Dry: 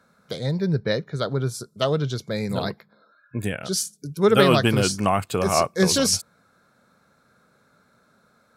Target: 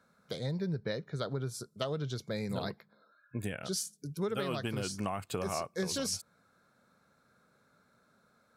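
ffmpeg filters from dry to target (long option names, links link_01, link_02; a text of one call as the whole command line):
ffmpeg -i in.wav -af "acompressor=threshold=-23dB:ratio=10,volume=-7.5dB" out.wav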